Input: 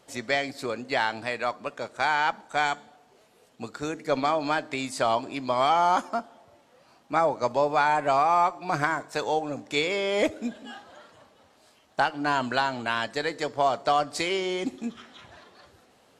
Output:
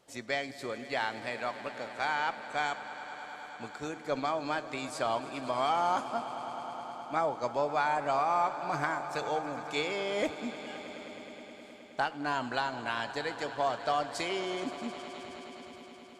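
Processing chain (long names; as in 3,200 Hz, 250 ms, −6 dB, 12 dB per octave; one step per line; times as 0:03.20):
echo that builds up and dies away 105 ms, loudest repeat 5, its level −17.5 dB
level −7 dB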